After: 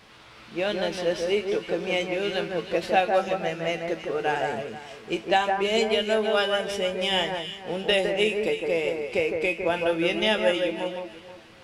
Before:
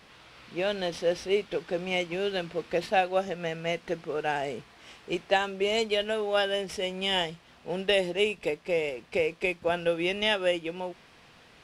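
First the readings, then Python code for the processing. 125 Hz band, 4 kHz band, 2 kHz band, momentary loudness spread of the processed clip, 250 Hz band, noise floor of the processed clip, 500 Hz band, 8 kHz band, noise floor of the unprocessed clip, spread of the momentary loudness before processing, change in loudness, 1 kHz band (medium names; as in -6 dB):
+2.5 dB, +3.0 dB, +3.5 dB, 10 LU, +4.5 dB, -49 dBFS, +3.5 dB, +3.0 dB, -56 dBFS, 9 LU, +3.5 dB, +4.5 dB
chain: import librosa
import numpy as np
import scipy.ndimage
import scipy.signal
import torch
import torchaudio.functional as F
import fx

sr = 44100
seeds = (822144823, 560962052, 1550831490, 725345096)

y = fx.comb_fb(x, sr, f0_hz=110.0, decay_s=0.19, harmonics='all', damping=0.0, mix_pct=70)
y = fx.echo_alternate(y, sr, ms=160, hz=2000.0, feedback_pct=53, wet_db=-4.0)
y = y * librosa.db_to_amplitude(8.0)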